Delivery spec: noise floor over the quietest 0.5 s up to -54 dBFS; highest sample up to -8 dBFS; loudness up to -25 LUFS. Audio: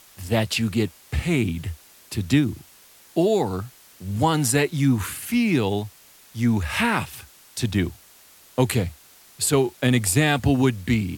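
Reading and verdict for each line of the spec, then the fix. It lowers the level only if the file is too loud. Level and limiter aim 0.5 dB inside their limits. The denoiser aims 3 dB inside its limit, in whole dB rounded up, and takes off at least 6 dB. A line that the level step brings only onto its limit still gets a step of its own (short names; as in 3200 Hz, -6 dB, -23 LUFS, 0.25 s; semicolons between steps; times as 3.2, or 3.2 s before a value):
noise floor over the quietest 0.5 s -51 dBFS: fail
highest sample -6.5 dBFS: fail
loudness -23.0 LUFS: fail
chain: denoiser 6 dB, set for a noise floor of -51 dBFS; gain -2.5 dB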